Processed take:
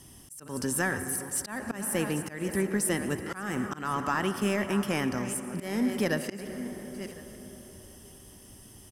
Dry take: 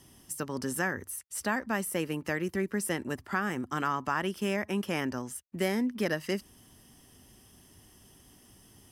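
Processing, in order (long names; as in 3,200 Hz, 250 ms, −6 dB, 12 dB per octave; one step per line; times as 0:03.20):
delay that plays each chunk backwards 445 ms, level −12 dB
parametric band 9,100 Hz +5.5 dB 0.9 octaves
on a send at −11 dB: convolution reverb RT60 4.7 s, pre-delay 78 ms
on the sum: volume swells 224 ms
in parallel at −8.5 dB: soft clipping −32.5 dBFS, distortion −7 dB
on the sum: low-shelf EQ 130 Hz +5.5 dB
single-tap delay 1,059 ms −22 dB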